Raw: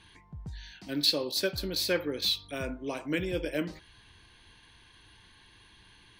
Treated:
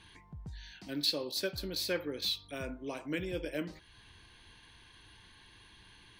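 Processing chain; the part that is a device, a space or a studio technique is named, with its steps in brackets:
parallel compression (in parallel at −1 dB: downward compressor, threshold −49 dBFS, peak gain reduction 26 dB)
on the sum: level −6 dB

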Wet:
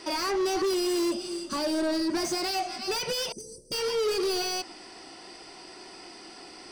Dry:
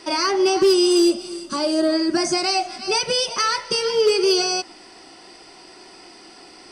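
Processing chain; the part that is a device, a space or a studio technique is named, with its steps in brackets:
0:03.32–0:03.72: inverse Chebyshev band-stop filter 1,100–3,000 Hz, stop band 70 dB
saturation between pre-emphasis and de-emphasis (high-shelf EQ 3,500 Hz +9 dB; soft clipping −22 dBFS, distortion −7 dB; high-shelf EQ 3,500 Hz −9 dB)
level −1.5 dB

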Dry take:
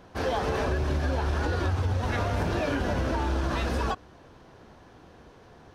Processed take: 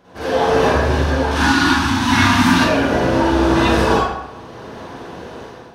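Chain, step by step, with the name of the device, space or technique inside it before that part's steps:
0:01.31–0:02.59: drawn EQ curve 150 Hz 0 dB, 280 Hz +13 dB, 470 Hz −24 dB, 900 Hz +6 dB, 4,200 Hz +11 dB
far laptop microphone (convolution reverb RT60 0.85 s, pre-delay 41 ms, DRR −9 dB; high-pass filter 120 Hz 6 dB per octave; automatic gain control gain up to 11.5 dB)
level −1 dB

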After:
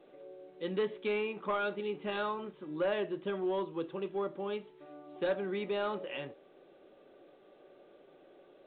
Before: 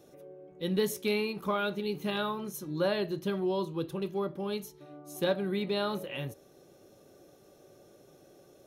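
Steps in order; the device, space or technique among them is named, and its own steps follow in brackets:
telephone (band-pass filter 300–3,200 Hz; soft clipping −23.5 dBFS, distortion −18 dB; A-law companding 64 kbit/s 8,000 Hz)

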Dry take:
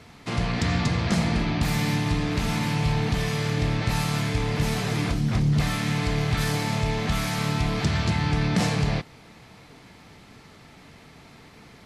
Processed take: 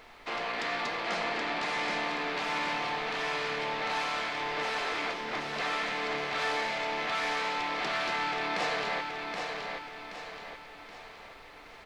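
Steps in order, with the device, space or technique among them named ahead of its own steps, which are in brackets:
aircraft cabin announcement (band-pass filter 420–3,200 Hz; soft clipping −22.5 dBFS, distortion −22 dB; brown noise bed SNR 15 dB)
bass and treble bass −13 dB, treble +2 dB
repeating echo 775 ms, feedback 45%, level −4.5 dB
0:01.03–0:02.02: low-pass filter 11,000 Hz 24 dB per octave

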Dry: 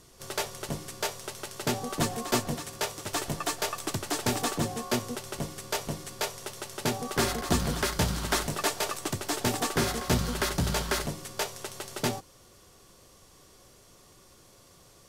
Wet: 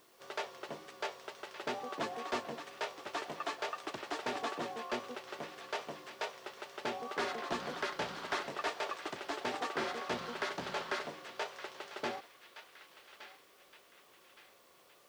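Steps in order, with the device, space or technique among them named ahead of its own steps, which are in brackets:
tape answering machine (band-pass filter 400–3,100 Hz; soft clipping −22 dBFS, distortion −18 dB; tape wow and flutter; white noise bed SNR 28 dB)
feedback echo with a band-pass in the loop 1,167 ms, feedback 47%, band-pass 2,700 Hz, level −10 dB
level −4 dB

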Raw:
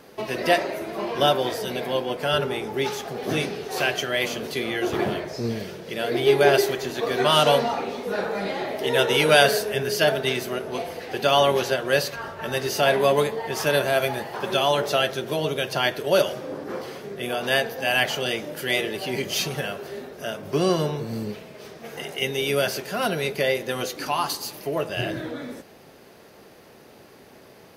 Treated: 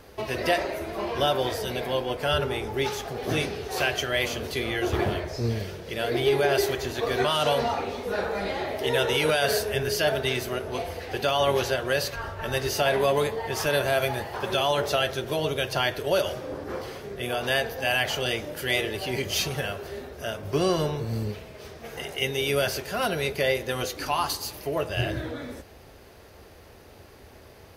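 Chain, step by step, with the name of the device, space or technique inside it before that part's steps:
car stereo with a boomy subwoofer (low shelf with overshoot 110 Hz +14 dB, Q 1.5; brickwall limiter −12 dBFS, peak gain reduction 9.5 dB)
level −1 dB

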